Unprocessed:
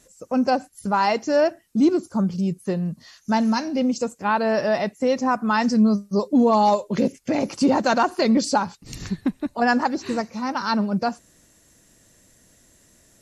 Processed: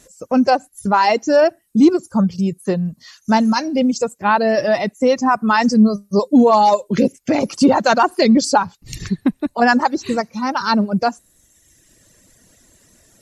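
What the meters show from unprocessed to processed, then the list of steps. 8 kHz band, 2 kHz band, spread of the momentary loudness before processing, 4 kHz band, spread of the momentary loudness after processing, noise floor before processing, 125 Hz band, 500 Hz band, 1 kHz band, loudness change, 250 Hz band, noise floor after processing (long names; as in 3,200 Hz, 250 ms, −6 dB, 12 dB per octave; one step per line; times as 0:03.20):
+6.0 dB, +6.0 dB, 9 LU, +6.0 dB, 8 LU, −57 dBFS, +4.5 dB, +5.5 dB, +6.0 dB, +5.5 dB, +5.0 dB, −58 dBFS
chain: reverb reduction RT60 1.2 s
level +6.5 dB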